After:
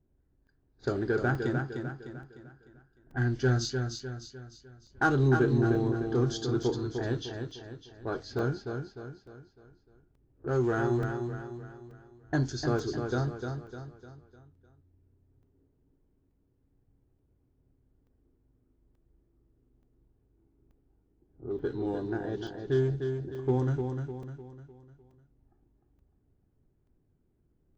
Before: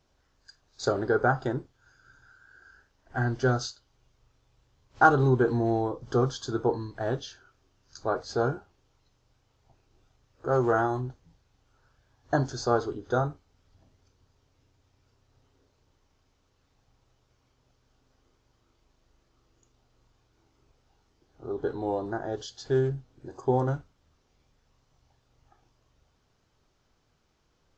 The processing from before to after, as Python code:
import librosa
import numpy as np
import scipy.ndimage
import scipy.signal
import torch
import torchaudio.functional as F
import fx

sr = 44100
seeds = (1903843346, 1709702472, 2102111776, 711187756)

p1 = fx.env_lowpass(x, sr, base_hz=630.0, full_db=-24.5)
p2 = fx.band_shelf(p1, sr, hz=800.0, db=-10.0, octaves=1.7)
p3 = np.clip(10.0 ** (29.5 / 20.0) * p2, -1.0, 1.0) / 10.0 ** (29.5 / 20.0)
p4 = p2 + F.gain(torch.from_numpy(p3), -10.0).numpy()
p5 = fx.echo_feedback(p4, sr, ms=302, feedback_pct=44, wet_db=-6)
p6 = fx.buffer_crackle(p5, sr, first_s=0.47, period_s=0.88, block=128, kind='zero')
y = F.gain(torch.from_numpy(p6), -1.5).numpy()